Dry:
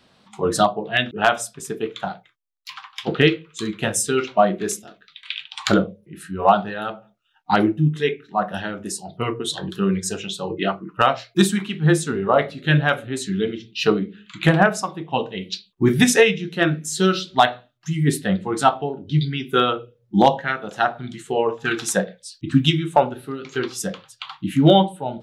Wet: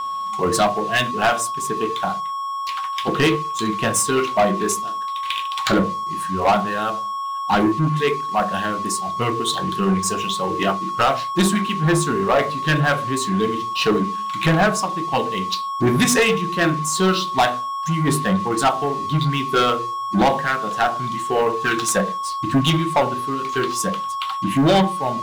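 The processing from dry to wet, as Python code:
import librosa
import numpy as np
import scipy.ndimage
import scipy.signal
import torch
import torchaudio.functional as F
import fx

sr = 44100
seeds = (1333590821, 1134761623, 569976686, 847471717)

y = x + 10.0 ** (-27.0 / 20.0) * np.sin(2.0 * np.pi * 1100.0 * np.arange(len(x)) / sr)
y = fx.hum_notches(y, sr, base_hz=50, count=9)
y = fx.leveller(y, sr, passes=3)
y = F.gain(torch.from_numpy(y), -7.5).numpy()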